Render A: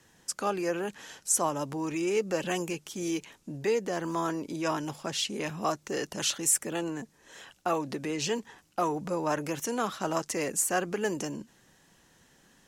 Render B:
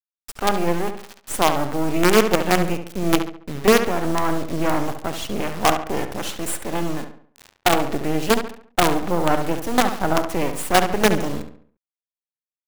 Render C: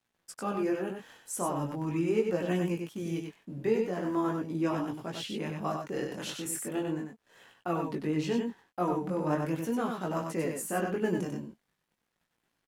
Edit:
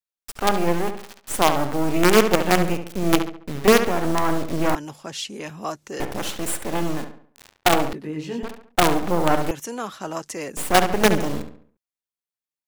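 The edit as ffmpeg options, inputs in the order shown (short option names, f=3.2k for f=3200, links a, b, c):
-filter_complex "[0:a]asplit=2[a][b];[1:a]asplit=4[c][d][e][f];[c]atrim=end=4.752[g];[a]atrim=start=4.748:end=6.002[h];[d]atrim=start=5.998:end=7.932[i];[2:a]atrim=start=7.928:end=8.432[j];[e]atrim=start=8.428:end=9.512[k];[b]atrim=start=9.508:end=10.572[l];[f]atrim=start=10.568[m];[g][h]acrossfade=d=0.004:c1=hsin:c2=hsin[n];[n][i]acrossfade=d=0.004:c1=hsin:c2=hsin[o];[o][j]acrossfade=d=0.004:c1=hsin:c2=hsin[p];[p][k]acrossfade=d=0.004:c1=hsin:c2=hsin[q];[q][l]acrossfade=d=0.004:c1=hsin:c2=hsin[r];[r][m]acrossfade=d=0.004:c1=hsin:c2=hsin"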